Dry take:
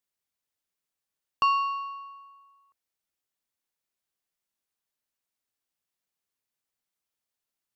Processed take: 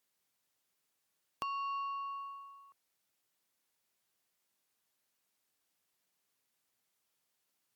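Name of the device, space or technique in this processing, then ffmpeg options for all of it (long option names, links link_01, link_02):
podcast mastering chain: -af "highpass=96,deesser=0.75,acompressor=threshold=-45dB:ratio=3,alimiter=level_in=3.5dB:limit=-24dB:level=0:latency=1:release=344,volume=-3.5dB,volume=6.5dB" -ar 48000 -c:a libmp3lame -b:a 96k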